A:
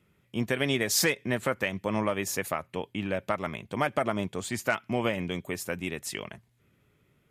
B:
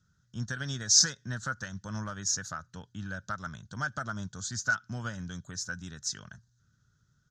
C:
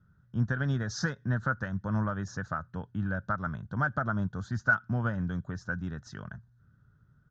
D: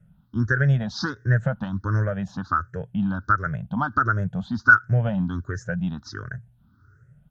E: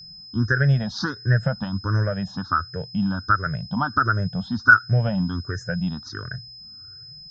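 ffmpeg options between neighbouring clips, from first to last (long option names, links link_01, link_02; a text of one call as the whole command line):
ffmpeg -i in.wav -af "firequalizer=gain_entry='entry(120,0);entry(360,-20);entry(1100,-11);entry(1500,5);entry(2200,-28);entry(3800,-1);entry(6200,11);entry(9200,-19);entry(13000,-29)':delay=0.05:min_phase=1" out.wav
ffmpeg -i in.wav -af "lowpass=1300,volume=7.5dB" out.wav
ffmpeg -i in.wav -af "afftfilt=real='re*pow(10,20/40*sin(2*PI*(0.5*log(max(b,1)*sr/1024/100)/log(2)-(1.4)*(pts-256)/sr)))':imag='im*pow(10,20/40*sin(2*PI*(0.5*log(max(b,1)*sr/1024/100)/log(2)-(1.4)*(pts-256)/sr)))':win_size=1024:overlap=0.75,volume=3dB" out.wav
ffmpeg -i in.wav -af "aeval=exprs='val(0)+0.00891*sin(2*PI*5100*n/s)':channel_layout=same,volume=1dB" out.wav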